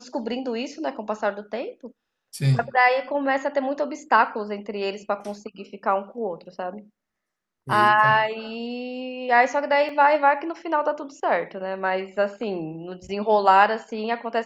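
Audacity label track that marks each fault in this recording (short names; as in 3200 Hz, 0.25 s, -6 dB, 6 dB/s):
9.890000	9.890000	gap 2.2 ms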